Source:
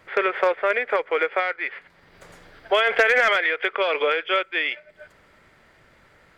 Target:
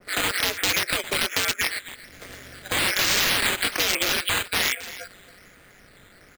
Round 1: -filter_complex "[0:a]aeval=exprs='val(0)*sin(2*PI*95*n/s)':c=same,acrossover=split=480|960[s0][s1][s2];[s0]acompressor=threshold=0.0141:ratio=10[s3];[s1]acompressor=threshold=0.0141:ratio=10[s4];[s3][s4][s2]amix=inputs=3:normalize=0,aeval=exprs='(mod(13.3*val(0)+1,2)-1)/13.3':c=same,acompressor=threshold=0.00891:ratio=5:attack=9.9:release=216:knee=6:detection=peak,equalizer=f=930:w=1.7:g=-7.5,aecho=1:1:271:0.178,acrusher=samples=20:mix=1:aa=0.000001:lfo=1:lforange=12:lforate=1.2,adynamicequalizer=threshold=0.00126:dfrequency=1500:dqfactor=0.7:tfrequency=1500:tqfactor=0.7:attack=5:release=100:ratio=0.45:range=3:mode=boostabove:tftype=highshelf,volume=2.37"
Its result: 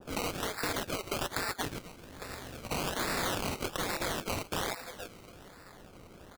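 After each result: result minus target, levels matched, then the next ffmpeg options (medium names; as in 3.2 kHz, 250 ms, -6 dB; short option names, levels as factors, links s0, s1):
compression: peak gain reduction +8.5 dB; decimation with a swept rate: distortion +11 dB
-filter_complex "[0:a]aeval=exprs='val(0)*sin(2*PI*95*n/s)':c=same,acrossover=split=480|960[s0][s1][s2];[s0]acompressor=threshold=0.0141:ratio=10[s3];[s1]acompressor=threshold=0.0141:ratio=10[s4];[s3][s4][s2]amix=inputs=3:normalize=0,aeval=exprs='(mod(13.3*val(0)+1,2)-1)/13.3':c=same,acompressor=threshold=0.0299:ratio=5:attack=9.9:release=216:knee=6:detection=peak,equalizer=f=930:w=1.7:g=-7.5,aecho=1:1:271:0.178,acrusher=samples=20:mix=1:aa=0.000001:lfo=1:lforange=12:lforate=1.2,adynamicequalizer=threshold=0.00126:dfrequency=1500:dqfactor=0.7:tfrequency=1500:tqfactor=0.7:attack=5:release=100:ratio=0.45:range=3:mode=boostabove:tftype=highshelf,volume=2.37"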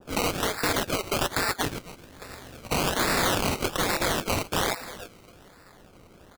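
decimation with a swept rate: distortion +11 dB
-filter_complex "[0:a]aeval=exprs='val(0)*sin(2*PI*95*n/s)':c=same,acrossover=split=480|960[s0][s1][s2];[s0]acompressor=threshold=0.0141:ratio=10[s3];[s1]acompressor=threshold=0.0141:ratio=10[s4];[s3][s4][s2]amix=inputs=3:normalize=0,aeval=exprs='(mod(13.3*val(0)+1,2)-1)/13.3':c=same,acompressor=threshold=0.0299:ratio=5:attack=9.9:release=216:knee=6:detection=peak,equalizer=f=930:w=1.7:g=-7.5,aecho=1:1:271:0.178,acrusher=samples=6:mix=1:aa=0.000001:lfo=1:lforange=3.6:lforate=1.2,adynamicequalizer=threshold=0.00126:dfrequency=1500:dqfactor=0.7:tfrequency=1500:tqfactor=0.7:attack=5:release=100:ratio=0.45:range=3:mode=boostabove:tftype=highshelf,volume=2.37"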